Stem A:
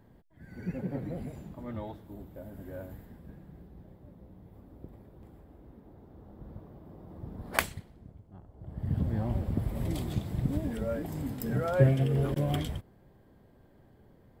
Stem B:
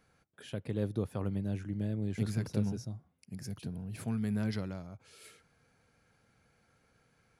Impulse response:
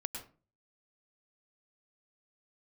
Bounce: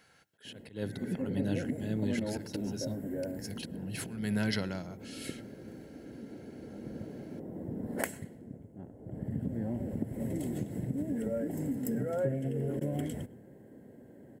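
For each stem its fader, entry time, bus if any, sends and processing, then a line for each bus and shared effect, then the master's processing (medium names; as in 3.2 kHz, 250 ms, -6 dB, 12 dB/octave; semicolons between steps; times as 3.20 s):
-4.0 dB, 0.45 s, send -16 dB, graphic EQ 125/250/500/1000/2000/4000/8000 Hz +6/+12/+10/-3/+8/-7/+10 dB; compression 4:1, threshold -28 dBFS, peak gain reduction 18 dB
+2.5 dB, 0.00 s, send -21.5 dB, peaking EQ 2.9 kHz +8.5 dB 2.8 oct; slow attack 257 ms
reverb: on, RT60 0.35 s, pre-delay 97 ms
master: treble shelf 8.3 kHz +7 dB; comb of notches 1.2 kHz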